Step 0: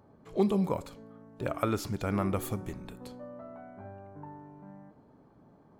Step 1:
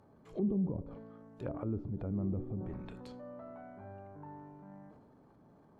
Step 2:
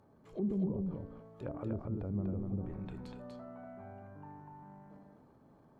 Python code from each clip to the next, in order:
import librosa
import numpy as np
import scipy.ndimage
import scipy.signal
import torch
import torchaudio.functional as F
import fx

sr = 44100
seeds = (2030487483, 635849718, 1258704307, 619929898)

y1 = fx.transient(x, sr, attack_db=-5, sustain_db=6)
y1 = fx.env_lowpass_down(y1, sr, base_hz=320.0, full_db=-29.0)
y1 = y1 * librosa.db_to_amplitude(-3.0)
y2 = y1 + 10.0 ** (-3.5 / 20.0) * np.pad(y1, (int(243 * sr / 1000.0), 0))[:len(y1)]
y2 = y2 * librosa.db_to_amplitude(-2.0)